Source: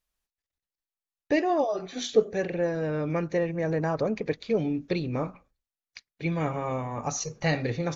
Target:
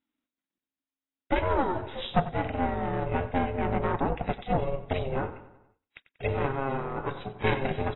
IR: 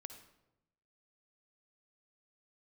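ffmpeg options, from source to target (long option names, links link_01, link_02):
-filter_complex "[0:a]aeval=exprs='val(0)*sin(2*PI*270*n/s)':channel_layout=same,aeval=exprs='(tanh(12.6*val(0)+0.65)-tanh(0.65))/12.6':channel_layout=same,asplit=2[link_01][link_02];[link_02]adelay=94,lowpass=frequency=4800:poles=1,volume=-14dB,asplit=2[link_03][link_04];[link_04]adelay=94,lowpass=frequency=4800:poles=1,volume=0.54,asplit=2[link_05][link_06];[link_06]adelay=94,lowpass=frequency=4800:poles=1,volume=0.54,asplit=2[link_07][link_08];[link_08]adelay=94,lowpass=frequency=4800:poles=1,volume=0.54,asplit=2[link_09][link_10];[link_10]adelay=94,lowpass=frequency=4800:poles=1,volume=0.54[link_11];[link_01][link_03][link_05][link_07][link_09][link_11]amix=inputs=6:normalize=0,volume=5dB" -ar 22050 -c:a aac -b:a 16k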